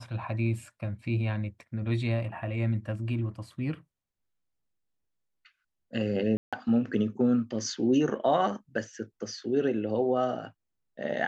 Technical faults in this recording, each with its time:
6.37–6.53 gap 0.156 s

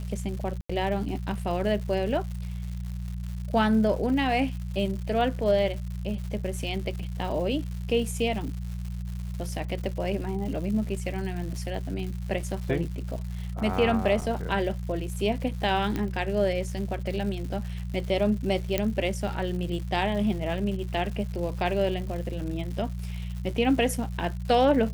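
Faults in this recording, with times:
crackle 240/s -36 dBFS
hum 60 Hz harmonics 3 -33 dBFS
0.61–0.69 gap 85 ms
14.21–14.22 gap 6.9 ms
15.96 pop -16 dBFS
18.78 pop -10 dBFS

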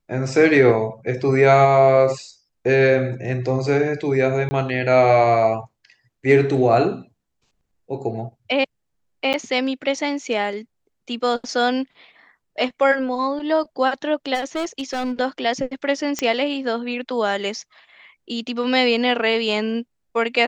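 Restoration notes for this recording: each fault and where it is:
4.49–4.51 gap 20 ms
9.33–9.34 gap 8.6 ms
14.34–15.12 clipped -20.5 dBFS
16.19 pop -8 dBFS

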